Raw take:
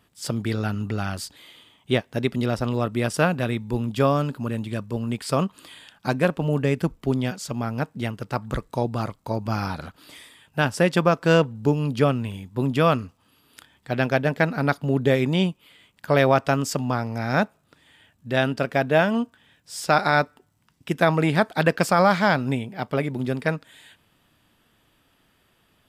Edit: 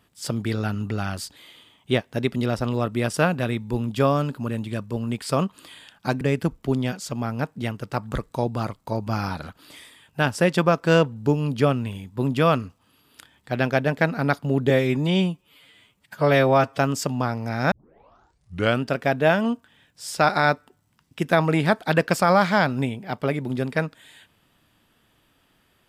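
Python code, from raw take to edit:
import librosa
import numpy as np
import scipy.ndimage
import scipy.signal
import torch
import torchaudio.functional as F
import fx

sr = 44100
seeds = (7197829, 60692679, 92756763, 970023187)

y = fx.edit(x, sr, fx.cut(start_s=6.21, length_s=0.39),
    fx.stretch_span(start_s=15.09, length_s=1.39, factor=1.5),
    fx.tape_start(start_s=17.41, length_s=1.12), tone=tone)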